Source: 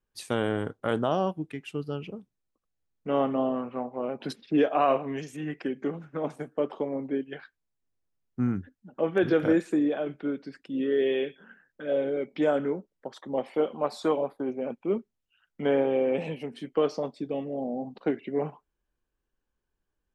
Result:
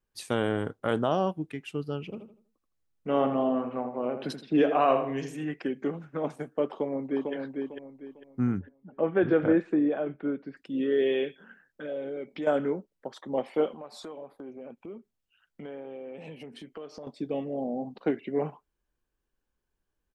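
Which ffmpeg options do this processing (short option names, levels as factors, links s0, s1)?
-filter_complex "[0:a]asplit=3[s0][s1][s2];[s0]afade=t=out:st=2.12:d=0.02[s3];[s1]asplit=2[s4][s5];[s5]adelay=81,lowpass=f=3000:p=1,volume=0.398,asplit=2[s6][s7];[s7]adelay=81,lowpass=f=3000:p=1,volume=0.33,asplit=2[s8][s9];[s9]adelay=81,lowpass=f=3000:p=1,volume=0.33,asplit=2[s10][s11];[s11]adelay=81,lowpass=f=3000:p=1,volume=0.33[s12];[s4][s6][s8][s10][s12]amix=inputs=5:normalize=0,afade=t=in:st=2.12:d=0.02,afade=t=out:st=5.49:d=0.02[s13];[s2]afade=t=in:st=5.49:d=0.02[s14];[s3][s13][s14]amix=inputs=3:normalize=0,asplit=2[s15][s16];[s16]afade=t=in:st=6.66:d=0.01,afade=t=out:st=7.33:d=0.01,aecho=0:1:450|900|1350|1800:0.630957|0.189287|0.0567862|0.0170358[s17];[s15][s17]amix=inputs=2:normalize=0,asettb=1/sr,asplit=3[s18][s19][s20];[s18]atrim=end=8.594[s21];[s19]atrim=start=8.59:end=10.57,asetpts=PTS-STARTPTS,afade=t=in:d=0.004:c=qsin,afade=t=out:st=1.976:d=0.004:c=qsin,lowpass=2100[s22];[s20]atrim=start=10.566[s23];[s21][s22]acrossfade=d=0.004:c1=hsin:c2=qsin[s24];[s24][s23]acrossfade=d=0.004:c1=qsin:c2=hsin,asettb=1/sr,asplit=3[s25][s26][s27];[s25]atrim=end=11.864[s28];[s26]atrim=start=11.86:end=12.47,asetpts=PTS-STARTPTS,afade=t=in:d=0.004:c=qsin,afade=t=out:st=0.606:d=0.004:c=qsin,acompressor=threshold=0.0141:ratio=2:attack=3.2:release=140:knee=1:detection=peak[s29];[s27]atrim=start=12.466[s30];[s28][s29]acrossfade=d=0.004:c1=hsin:c2=qsin[s31];[s31][s30]acrossfade=d=0.004:c1=qsin:c2=hsin,asettb=1/sr,asplit=3[s32][s33][s34];[s32]atrim=end=13.724[s35];[s33]atrim=start=13.72:end=17.07,asetpts=PTS-STARTPTS,afade=t=in:d=0.004:c=qsin,afade=t=out:st=3.346:d=0.004:c=qsin,acompressor=threshold=0.00891:ratio=4:attack=3.2:release=140:knee=1:detection=peak[s36];[s34]atrim=start=17.066[s37];[s35][s36]acrossfade=d=0.004:c1=hsin:c2=qsin[s38];[s38][s37]acrossfade=d=0.004:c1=qsin:c2=hsin"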